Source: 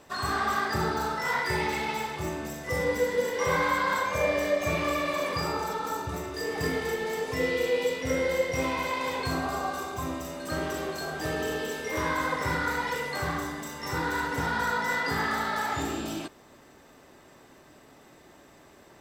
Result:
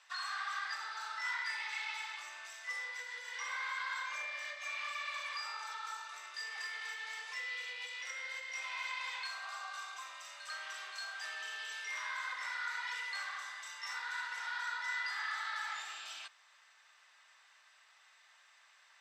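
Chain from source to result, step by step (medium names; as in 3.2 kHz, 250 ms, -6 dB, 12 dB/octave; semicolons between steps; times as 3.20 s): compression 3:1, threshold -29 dBFS, peak gain reduction 7 dB; Bessel high-pass 1.8 kHz, order 4; distance through air 88 m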